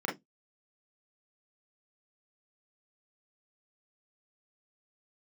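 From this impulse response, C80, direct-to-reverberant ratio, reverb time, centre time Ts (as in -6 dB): 25.0 dB, -2.5 dB, 0.15 s, 26 ms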